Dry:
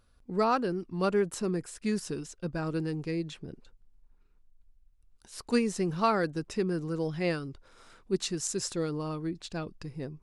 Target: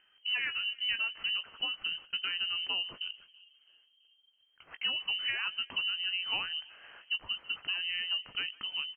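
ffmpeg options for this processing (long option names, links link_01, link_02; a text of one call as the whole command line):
ffmpeg -i in.wav -filter_complex "[0:a]acompressor=threshold=-34dB:ratio=10,asplit=2[link_01][link_02];[link_02]adelay=377,lowpass=frequency=830:poles=1,volume=-23dB,asplit=2[link_03][link_04];[link_04]adelay=377,lowpass=frequency=830:poles=1,volume=0.54,asplit=2[link_05][link_06];[link_06]adelay=377,lowpass=frequency=830:poles=1,volume=0.54,asplit=2[link_07][link_08];[link_08]adelay=377,lowpass=frequency=830:poles=1,volume=0.54[link_09];[link_03][link_05][link_07][link_09]amix=inputs=4:normalize=0[link_10];[link_01][link_10]amix=inputs=2:normalize=0,asetrate=50274,aresample=44100,highpass=frequency=150:poles=1,tiltshelf=frequency=690:gain=6,asplit=2[link_11][link_12];[link_12]adelay=19,volume=-11dB[link_13];[link_11][link_13]amix=inputs=2:normalize=0,asplit=2[link_14][link_15];[link_15]adelay=150,highpass=300,lowpass=3400,asoftclip=type=hard:threshold=-34dB,volume=-23dB[link_16];[link_14][link_16]amix=inputs=2:normalize=0,crystalizer=i=10:c=0,lowpass=frequency=2700:width_type=q:width=0.5098,lowpass=frequency=2700:width_type=q:width=0.6013,lowpass=frequency=2700:width_type=q:width=0.9,lowpass=frequency=2700:width_type=q:width=2.563,afreqshift=-3200" out.wav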